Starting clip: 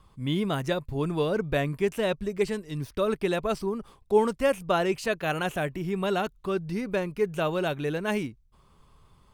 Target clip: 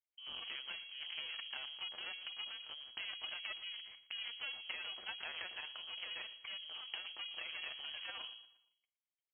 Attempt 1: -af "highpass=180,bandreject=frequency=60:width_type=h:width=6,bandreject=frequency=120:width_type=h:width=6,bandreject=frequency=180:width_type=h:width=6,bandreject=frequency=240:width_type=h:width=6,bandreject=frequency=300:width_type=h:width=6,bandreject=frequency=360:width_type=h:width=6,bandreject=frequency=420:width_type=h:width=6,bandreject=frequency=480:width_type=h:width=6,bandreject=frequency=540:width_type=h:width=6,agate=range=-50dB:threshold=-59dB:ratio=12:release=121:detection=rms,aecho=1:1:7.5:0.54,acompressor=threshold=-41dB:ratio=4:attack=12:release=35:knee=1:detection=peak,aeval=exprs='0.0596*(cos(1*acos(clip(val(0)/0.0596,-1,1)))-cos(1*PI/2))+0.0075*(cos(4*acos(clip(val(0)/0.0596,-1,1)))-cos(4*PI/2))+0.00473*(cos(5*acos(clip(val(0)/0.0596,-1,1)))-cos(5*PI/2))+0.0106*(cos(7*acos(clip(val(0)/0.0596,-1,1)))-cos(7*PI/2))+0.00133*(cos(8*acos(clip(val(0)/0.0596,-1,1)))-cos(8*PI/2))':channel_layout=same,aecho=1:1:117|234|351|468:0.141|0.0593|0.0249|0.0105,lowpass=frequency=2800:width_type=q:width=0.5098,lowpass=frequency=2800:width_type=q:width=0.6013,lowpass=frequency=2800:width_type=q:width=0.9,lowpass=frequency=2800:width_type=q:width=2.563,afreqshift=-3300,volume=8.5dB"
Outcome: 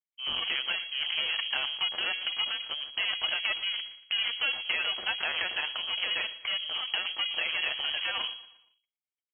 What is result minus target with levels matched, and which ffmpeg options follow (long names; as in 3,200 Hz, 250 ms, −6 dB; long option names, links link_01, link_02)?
downward compressor: peak gain reduction −7 dB
-af "highpass=180,bandreject=frequency=60:width_type=h:width=6,bandreject=frequency=120:width_type=h:width=6,bandreject=frequency=180:width_type=h:width=6,bandreject=frequency=240:width_type=h:width=6,bandreject=frequency=300:width_type=h:width=6,bandreject=frequency=360:width_type=h:width=6,bandreject=frequency=420:width_type=h:width=6,bandreject=frequency=480:width_type=h:width=6,bandreject=frequency=540:width_type=h:width=6,agate=range=-50dB:threshold=-59dB:ratio=12:release=121:detection=rms,aecho=1:1:7.5:0.54,acompressor=threshold=-50.5dB:ratio=4:attack=12:release=35:knee=1:detection=peak,aeval=exprs='0.0596*(cos(1*acos(clip(val(0)/0.0596,-1,1)))-cos(1*PI/2))+0.0075*(cos(4*acos(clip(val(0)/0.0596,-1,1)))-cos(4*PI/2))+0.00473*(cos(5*acos(clip(val(0)/0.0596,-1,1)))-cos(5*PI/2))+0.0106*(cos(7*acos(clip(val(0)/0.0596,-1,1)))-cos(7*PI/2))+0.00133*(cos(8*acos(clip(val(0)/0.0596,-1,1)))-cos(8*PI/2))':channel_layout=same,aecho=1:1:117|234|351|468:0.141|0.0593|0.0249|0.0105,lowpass=frequency=2800:width_type=q:width=0.5098,lowpass=frequency=2800:width_type=q:width=0.6013,lowpass=frequency=2800:width_type=q:width=0.9,lowpass=frequency=2800:width_type=q:width=2.563,afreqshift=-3300,volume=8.5dB"